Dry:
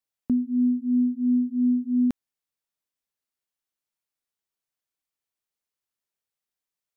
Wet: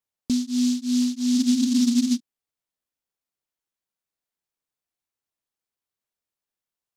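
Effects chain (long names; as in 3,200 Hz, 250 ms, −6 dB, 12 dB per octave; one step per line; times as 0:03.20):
frozen spectrum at 0:01.38, 0.80 s
short delay modulated by noise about 4,900 Hz, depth 0.13 ms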